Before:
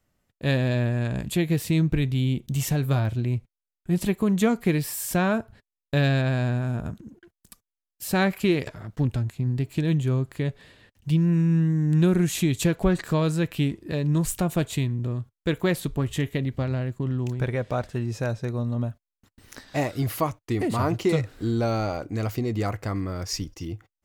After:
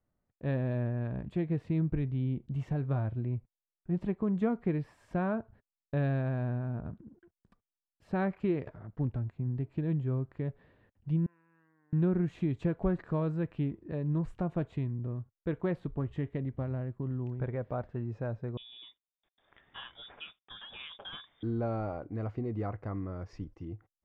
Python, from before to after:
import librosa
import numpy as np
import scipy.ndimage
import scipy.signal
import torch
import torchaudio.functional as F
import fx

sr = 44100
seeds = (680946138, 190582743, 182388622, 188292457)

y = fx.ladder_bandpass(x, sr, hz=1500.0, resonance_pct=25, at=(11.26, 11.93))
y = fx.freq_invert(y, sr, carrier_hz=3600, at=(18.57, 21.43))
y = scipy.signal.sosfilt(scipy.signal.butter(2, 1300.0, 'lowpass', fs=sr, output='sos'), y)
y = y * librosa.db_to_amplitude(-8.0)